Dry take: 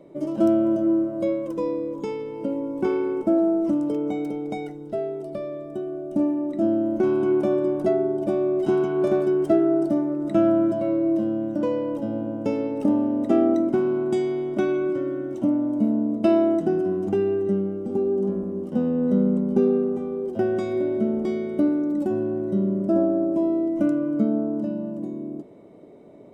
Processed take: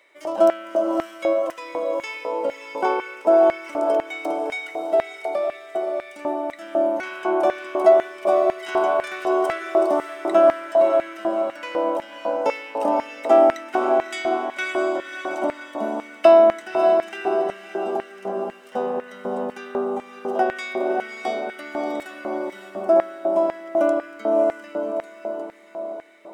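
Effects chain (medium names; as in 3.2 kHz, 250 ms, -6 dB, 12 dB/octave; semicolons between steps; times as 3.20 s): echo that smears into a reverb 590 ms, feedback 44%, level -5 dB; LFO high-pass square 2 Hz 780–1900 Hz; trim +7.5 dB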